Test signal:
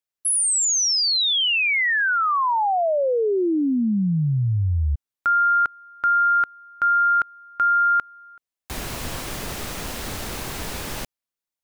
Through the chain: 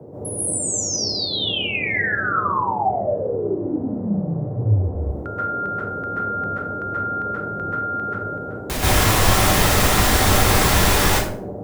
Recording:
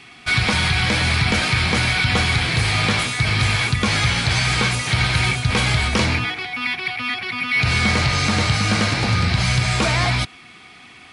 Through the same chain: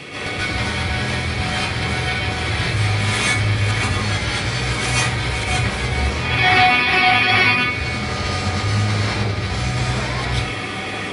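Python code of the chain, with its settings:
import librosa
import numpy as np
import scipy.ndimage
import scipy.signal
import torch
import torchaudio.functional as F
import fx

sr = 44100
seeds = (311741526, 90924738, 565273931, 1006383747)

y = fx.over_compress(x, sr, threshold_db=-29.0, ratio=-1.0)
y = fx.dmg_noise_band(y, sr, seeds[0], low_hz=85.0, high_hz=550.0, level_db=-39.0)
y = fx.rev_plate(y, sr, seeds[1], rt60_s=0.56, hf_ratio=0.65, predelay_ms=120, drr_db=-9.0)
y = F.gain(torch.from_numpy(y), -1.0).numpy()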